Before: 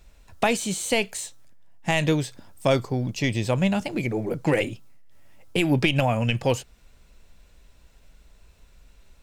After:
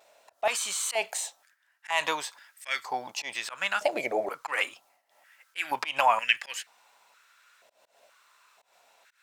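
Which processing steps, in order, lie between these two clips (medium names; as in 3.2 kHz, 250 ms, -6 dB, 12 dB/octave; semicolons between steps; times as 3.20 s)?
slow attack 142 ms; vibrato 0.65 Hz 23 cents; step-sequenced high-pass 2.1 Hz 640–1800 Hz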